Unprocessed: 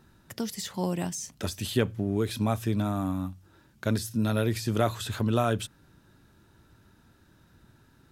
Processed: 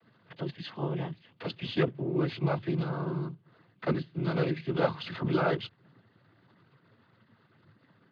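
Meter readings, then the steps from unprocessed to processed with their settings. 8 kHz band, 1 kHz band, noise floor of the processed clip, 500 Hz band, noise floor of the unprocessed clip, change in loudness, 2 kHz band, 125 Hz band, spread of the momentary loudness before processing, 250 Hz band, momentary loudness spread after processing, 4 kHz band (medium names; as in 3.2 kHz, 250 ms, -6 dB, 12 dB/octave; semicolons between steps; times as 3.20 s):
under -30 dB, -2.5 dB, -67 dBFS, -0.5 dB, -61 dBFS, -2.5 dB, 0.0 dB, -3.0 dB, 8 LU, -3.5 dB, 11 LU, -4.0 dB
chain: monotone LPC vocoder at 8 kHz 160 Hz; noise-vocoded speech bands 16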